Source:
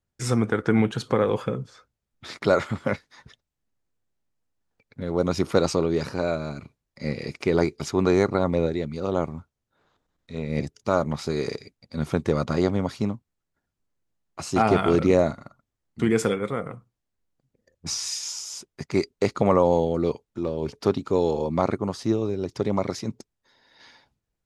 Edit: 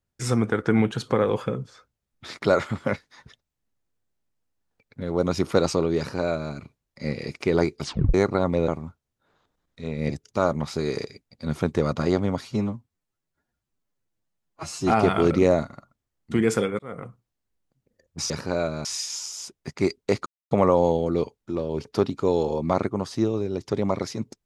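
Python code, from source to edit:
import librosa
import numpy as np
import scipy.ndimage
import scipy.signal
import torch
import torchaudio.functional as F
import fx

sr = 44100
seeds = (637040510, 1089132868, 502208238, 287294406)

y = fx.edit(x, sr, fx.duplicate(start_s=5.98, length_s=0.55, to_s=17.98),
    fx.tape_stop(start_s=7.83, length_s=0.31),
    fx.cut(start_s=8.68, length_s=0.51),
    fx.stretch_span(start_s=12.92, length_s=1.66, factor=1.5),
    fx.fade_in_span(start_s=16.47, length_s=0.25),
    fx.insert_silence(at_s=19.39, length_s=0.25), tone=tone)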